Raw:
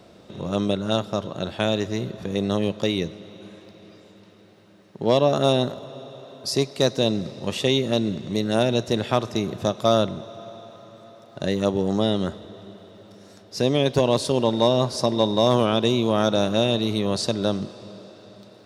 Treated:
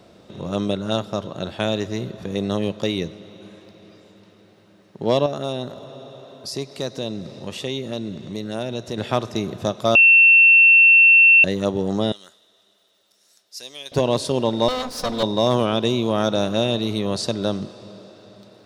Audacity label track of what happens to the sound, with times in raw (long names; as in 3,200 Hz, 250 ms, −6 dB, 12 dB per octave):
5.260000	8.980000	downward compressor 1.5 to 1, threshold −34 dBFS
9.950000	11.440000	beep over 2,700 Hz −8 dBFS
12.120000	13.920000	first difference
14.680000	15.230000	lower of the sound and its delayed copy delay 4 ms